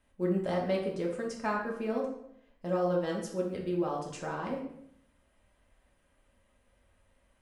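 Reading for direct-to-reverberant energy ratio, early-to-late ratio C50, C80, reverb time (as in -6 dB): -2.5 dB, 5.0 dB, 9.0 dB, 0.70 s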